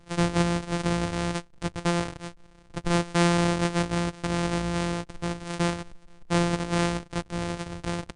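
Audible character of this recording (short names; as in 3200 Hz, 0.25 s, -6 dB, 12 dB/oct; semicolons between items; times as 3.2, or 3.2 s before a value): a buzz of ramps at a fixed pitch in blocks of 256 samples; MP3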